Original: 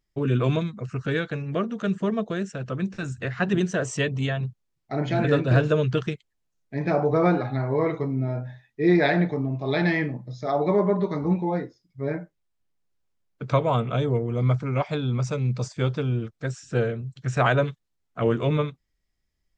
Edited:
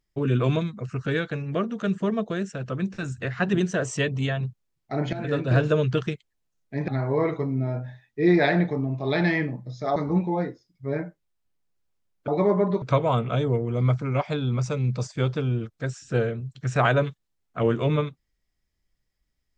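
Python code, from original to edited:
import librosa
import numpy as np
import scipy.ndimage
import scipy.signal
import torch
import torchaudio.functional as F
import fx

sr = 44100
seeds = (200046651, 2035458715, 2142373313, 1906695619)

y = fx.edit(x, sr, fx.fade_in_from(start_s=5.13, length_s=0.68, curve='qsin', floor_db=-13.0),
    fx.cut(start_s=6.88, length_s=0.61),
    fx.move(start_s=10.57, length_s=0.54, to_s=13.43), tone=tone)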